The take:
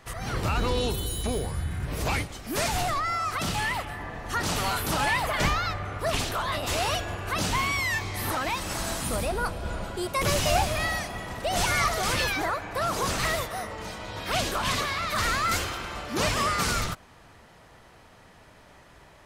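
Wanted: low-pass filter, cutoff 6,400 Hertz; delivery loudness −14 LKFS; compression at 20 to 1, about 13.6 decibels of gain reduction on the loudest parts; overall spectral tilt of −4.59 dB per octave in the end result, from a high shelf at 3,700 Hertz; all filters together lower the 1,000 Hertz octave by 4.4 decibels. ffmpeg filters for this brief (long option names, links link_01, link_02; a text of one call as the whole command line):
ffmpeg -i in.wav -af "lowpass=6400,equalizer=frequency=1000:width_type=o:gain=-5.5,highshelf=frequency=3700:gain=-5.5,acompressor=threshold=-34dB:ratio=20,volume=24.5dB" out.wav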